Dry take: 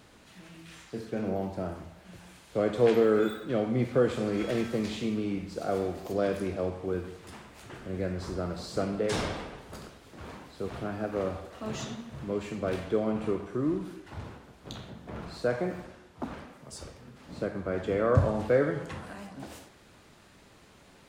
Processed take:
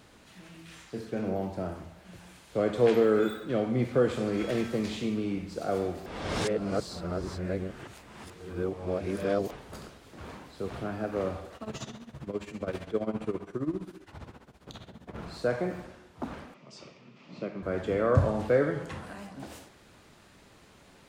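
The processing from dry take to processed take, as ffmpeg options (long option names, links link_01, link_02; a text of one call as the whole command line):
ffmpeg -i in.wav -filter_complex "[0:a]asettb=1/sr,asplit=3[link_01][link_02][link_03];[link_01]atrim=end=11.564[link_04];[link_02]atrim=start=11.56:end=15.18,asetpts=PTS-STARTPTS,afade=type=in:duration=0.004:curve=qsin,afade=type=out:start_time=3.616:duration=0.004:curve=qsin,tremolo=f=15:d=0.8[link_05];[link_03]atrim=start=15.176[link_06];[link_04][link_05]acrossfade=duration=0.004:curve1=hsin:curve2=qsin[link_07];[link_07][link_06]acrossfade=duration=0.004:curve1=qsin:curve2=hsin,asettb=1/sr,asplit=3[link_08][link_09][link_10];[link_08]atrim=end=16.544[link_11];[link_09]atrim=start=16.54:end=17.63,asetpts=PTS-STARTPTS,afade=type=in:duration=0.004:curve=qsin,afade=type=out:start_time=1.086:duration=0.004:curve=qsin,highpass=frequency=150:width=0.5412,highpass=frequency=150:width=1.3066,equalizer=frequency=270:width_type=q:width=4:gain=-5,equalizer=frequency=480:width_type=q:width=4:gain=-6,equalizer=frequency=810:width_type=q:width=4:gain=-6,equalizer=frequency=1600:width_type=q:width=4:gain=-10,equalizer=frequency=2500:width_type=q:width=4:gain=6,equalizer=frequency=4000:width_type=q:width=4:gain=-4,lowpass=frequency=5400:width=0.5412,lowpass=frequency=5400:width=1.3066[link_12];[link_10]atrim=start=17.626[link_13];[link_11][link_12]acrossfade=duration=0.004:curve1=hsin:curve2=qsin[link_14];[link_14][link_13]acrossfade=duration=0.004:curve1=qsin:curve2=hsin,asplit=3[link_15][link_16][link_17];[link_15]atrim=end=6.062[link_18];[link_16]atrim=start=6.058:end=9.512,asetpts=PTS-STARTPTS,areverse[link_19];[link_17]atrim=start=9.508[link_20];[link_18][link_19]acrossfade=duration=0.004:curve1=hsin:curve2=hsin[link_21];[link_21][link_20]acrossfade=duration=0.004:curve1=hsin:curve2=hsin" out.wav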